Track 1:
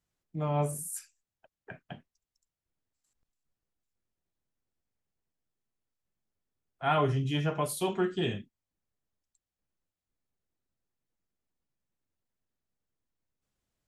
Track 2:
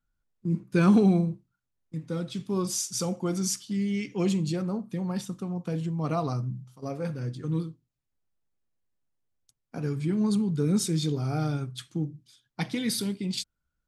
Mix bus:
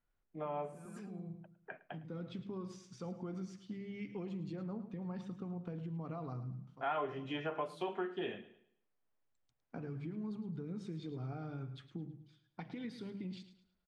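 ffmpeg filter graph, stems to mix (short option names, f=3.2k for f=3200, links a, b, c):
-filter_complex "[0:a]dynaudnorm=f=370:g=17:m=4dB,highpass=360,volume=-1dB,asplit=3[a][b][c];[b]volume=-20dB[d];[1:a]acompressor=threshold=-31dB:ratio=6,bandreject=f=50:t=h:w=6,bandreject=f=100:t=h:w=6,bandreject=f=150:t=h:w=6,bandreject=f=200:t=h:w=6,alimiter=level_in=3.5dB:limit=-24dB:level=0:latency=1:release=201,volume=-3.5dB,volume=-5dB,asplit=2[e][f];[f]volume=-12.5dB[g];[c]apad=whole_len=611754[h];[e][h]sidechaincompress=threshold=-44dB:ratio=8:attack=5.5:release=629[i];[d][g]amix=inputs=2:normalize=0,aecho=0:1:108|216|324|432|540:1|0.33|0.109|0.0359|0.0119[j];[a][i][j]amix=inputs=3:normalize=0,lowpass=2.3k,acompressor=threshold=-39dB:ratio=2.5"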